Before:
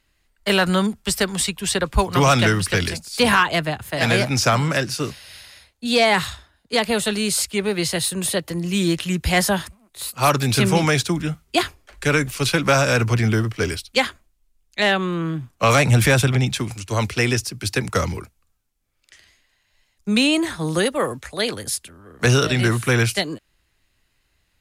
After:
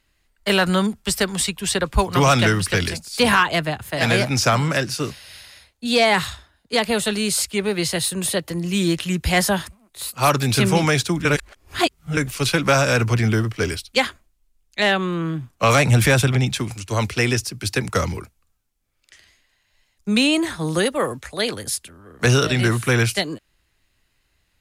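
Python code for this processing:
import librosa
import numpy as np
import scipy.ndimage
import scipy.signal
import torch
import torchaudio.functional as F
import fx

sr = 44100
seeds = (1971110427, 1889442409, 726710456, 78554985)

y = fx.edit(x, sr, fx.reverse_span(start_s=11.25, length_s=0.92), tone=tone)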